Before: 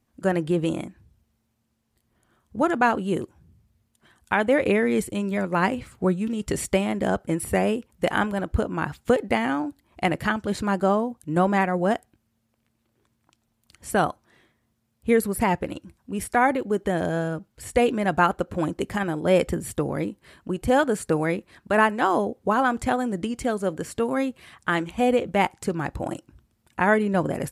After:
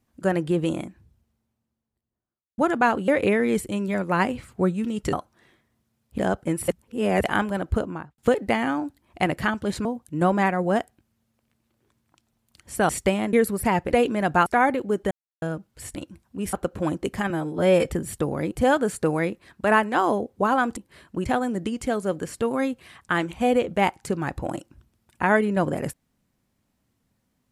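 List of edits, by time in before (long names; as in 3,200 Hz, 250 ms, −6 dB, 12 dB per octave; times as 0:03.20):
0:00.73–0:02.58: fade out and dull
0:03.08–0:04.51: remove
0:06.56–0:07.00: swap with 0:14.04–0:15.09
0:07.50–0:08.06: reverse
0:08.59–0:09.00: fade out and dull
0:10.67–0:11.00: remove
0:15.69–0:16.27: swap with 0:17.76–0:18.29
0:16.92–0:17.23: silence
0:19.06–0:19.43: time-stretch 1.5×
0:20.09–0:20.58: move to 0:22.83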